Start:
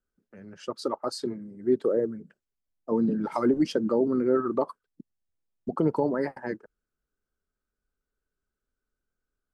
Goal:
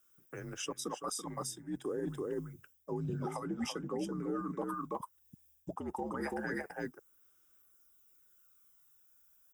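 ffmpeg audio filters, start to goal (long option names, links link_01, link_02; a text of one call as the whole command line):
ffmpeg -i in.wav -af "asuperstop=centerf=4400:order=8:qfactor=4.3,aecho=1:1:334:0.447,afreqshift=-73,areverse,acompressor=threshold=-34dB:ratio=6,areverse,aemphasis=mode=production:type=riaa,aphaser=in_gain=1:out_gain=1:delay=1.2:decay=0.34:speed=0.27:type=sinusoidal,alimiter=level_in=10dB:limit=-24dB:level=0:latency=1:release=442,volume=-10dB,volume=6.5dB" out.wav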